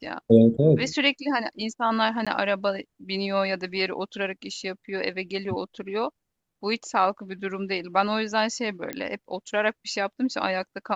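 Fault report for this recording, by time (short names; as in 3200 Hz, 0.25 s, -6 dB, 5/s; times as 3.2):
2.25–2.27 gap 16 ms
8.93 pop -15 dBFS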